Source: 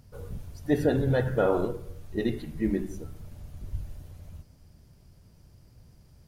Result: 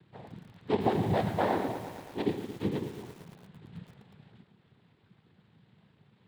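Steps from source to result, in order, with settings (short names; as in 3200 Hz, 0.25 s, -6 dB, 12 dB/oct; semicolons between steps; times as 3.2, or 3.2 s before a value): CVSD 16 kbps; noise vocoder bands 6; lo-fi delay 0.113 s, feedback 80%, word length 7-bit, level -11.5 dB; gain -3 dB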